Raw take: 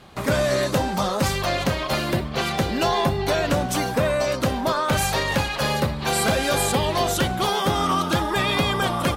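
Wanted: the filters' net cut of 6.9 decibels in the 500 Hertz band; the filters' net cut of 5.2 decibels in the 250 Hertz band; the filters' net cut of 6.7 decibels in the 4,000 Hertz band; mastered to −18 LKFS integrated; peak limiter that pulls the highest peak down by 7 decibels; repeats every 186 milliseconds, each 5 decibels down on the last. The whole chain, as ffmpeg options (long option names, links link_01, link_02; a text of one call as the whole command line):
ffmpeg -i in.wav -af "equalizer=frequency=250:width_type=o:gain=-5.5,equalizer=frequency=500:width_type=o:gain=-7.5,equalizer=frequency=4000:width_type=o:gain=-8.5,alimiter=limit=-20.5dB:level=0:latency=1,aecho=1:1:186|372|558|744|930|1116|1302:0.562|0.315|0.176|0.0988|0.0553|0.031|0.0173,volume=9.5dB" out.wav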